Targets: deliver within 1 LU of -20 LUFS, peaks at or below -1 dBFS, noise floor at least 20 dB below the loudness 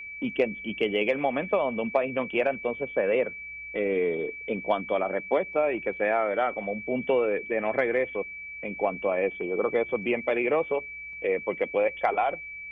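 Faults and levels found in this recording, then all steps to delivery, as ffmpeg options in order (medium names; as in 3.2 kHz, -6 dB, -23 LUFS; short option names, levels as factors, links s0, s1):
steady tone 2.3 kHz; tone level -37 dBFS; loudness -27.5 LUFS; peak level -9.0 dBFS; loudness target -20.0 LUFS
-> -af "bandreject=f=2300:w=30"
-af "volume=2.37"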